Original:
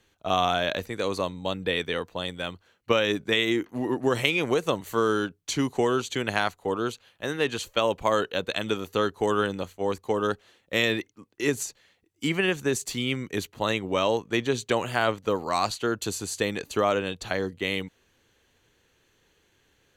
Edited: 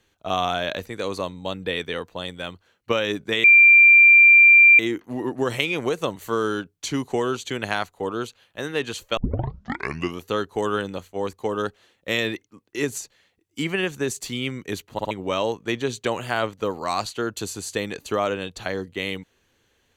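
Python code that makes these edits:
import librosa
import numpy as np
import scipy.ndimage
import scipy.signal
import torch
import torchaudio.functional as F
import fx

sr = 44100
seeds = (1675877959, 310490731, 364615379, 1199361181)

y = fx.edit(x, sr, fx.insert_tone(at_s=3.44, length_s=1.35, hz=2370.0, db=-8.0),
    fx.tape_start(start_s=7.82, length_s=1.08),
    fx.stutter_over(start_s=13.58, slice_s=0.06, count=3), tone=tone)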